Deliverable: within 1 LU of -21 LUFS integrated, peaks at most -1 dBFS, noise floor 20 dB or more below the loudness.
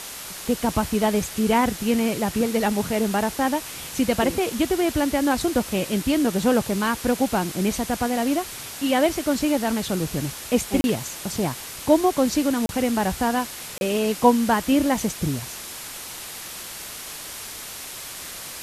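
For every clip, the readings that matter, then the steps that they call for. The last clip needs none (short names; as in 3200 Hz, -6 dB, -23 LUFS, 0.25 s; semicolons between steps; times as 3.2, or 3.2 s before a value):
dropouts 3; longest dropout 31 ms; noise floor -36 dBFS; noise floor target -44 dBFS; loudness -23.5 LUFS; peak -4.0 dBFS; loudness target -21.0 LUFS
-> interpolate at 10.81/12.66/13.78, 31 ms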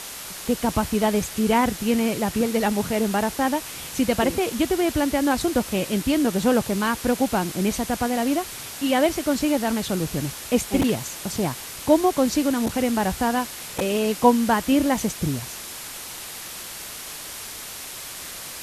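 dropouts 0; noise floor -36 dBFS; noise floor target -44 dBFS
-> noise print and reduce 8 dB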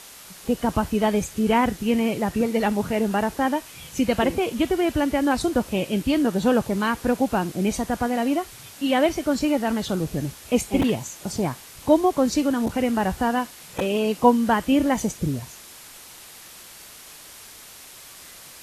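noise floor -44 dBFS; loudness -23.0 LUFS; peak -4.0 dBFS; loudness target -21.0 LUFS
-> gain +2 dB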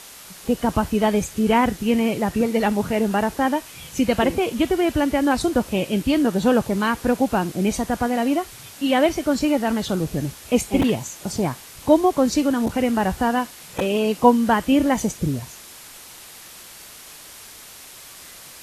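loudness -21.0 LUFS; peak -2.0 dBFS; noise floor -42 dBFS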